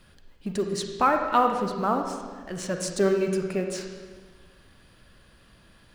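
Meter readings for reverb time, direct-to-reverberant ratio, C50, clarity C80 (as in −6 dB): 1.4 s, 3.5 dB, 4.5 dB, 6.0 dB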